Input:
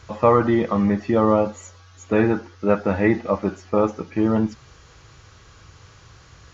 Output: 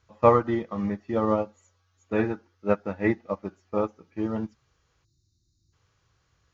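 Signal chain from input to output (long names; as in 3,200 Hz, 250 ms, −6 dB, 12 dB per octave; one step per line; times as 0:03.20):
gain on a spectral selection 0:05.04–0:05.73, 370–3,600 Hz −29 dB
expander for the loud parts 2.5 to 1, over −26 dBFS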